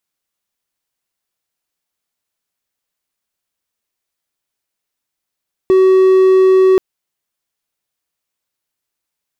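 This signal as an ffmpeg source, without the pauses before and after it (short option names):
-f lavfi -i "aevalsrc='0.631*(1-4*abs(mod(377*t+0.25,1)-0.5))':d=1.08:s=44100"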